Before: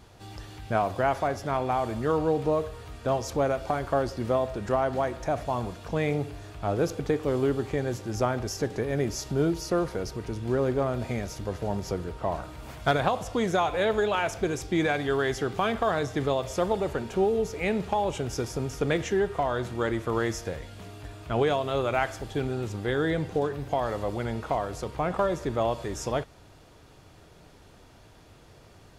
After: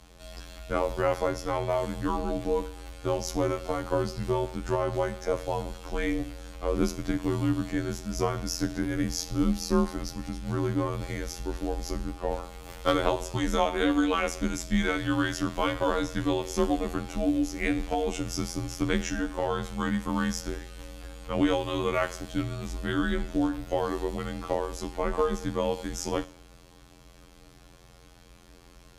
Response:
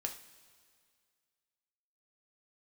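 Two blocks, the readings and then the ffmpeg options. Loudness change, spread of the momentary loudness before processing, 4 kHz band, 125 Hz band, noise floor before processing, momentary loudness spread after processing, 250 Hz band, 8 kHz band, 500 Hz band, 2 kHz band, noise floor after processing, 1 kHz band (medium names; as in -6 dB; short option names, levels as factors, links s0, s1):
-1.0 dB, 7 LU, +1.5 dB, -2.0 dB, -53 dBFS, 8 LU, +2.5 dB, +2.5 dB, -3.0 dB, -1.5 dB, -53 dBFS, -3.0 dB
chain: -filter_complex "[0:a]asplit=2[s0][s1];[1:a]atrim=start_sample=2205,afade=t=out:st=0.34:d=0.01,atrim=end_sample=15435,highshelf=f=3100:g=10.5[s2];[s1][s2]afir=irnorm=-1:irlink=0,volume=0.473[s3];[s0][s3]amix=inputs=2:normalize=0,afftfilt=real='hypot(re,im)*cos(PI*b)':imag='0':win_size=2048:overlap=0.75,afreqshift=-140"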